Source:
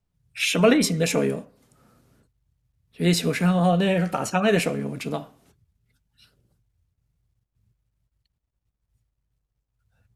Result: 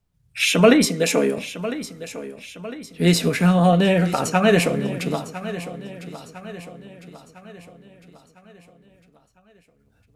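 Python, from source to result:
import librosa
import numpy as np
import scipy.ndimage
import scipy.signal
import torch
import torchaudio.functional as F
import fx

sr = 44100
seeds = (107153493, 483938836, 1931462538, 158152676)

p1 = fx.highpass(x, sr, hz=200.0, slope=24, at=(0.85, 1.38))
p2 = p1 + fx.echo_feedback(p1, sr, ms=1004, feedback_pct=48, wet_db=-14.0, dry=0)
p3 = fx.end_taper(p2, sr, db_per_s=170.0)
y = p3 * librosa.db_to_amplitude(4.0)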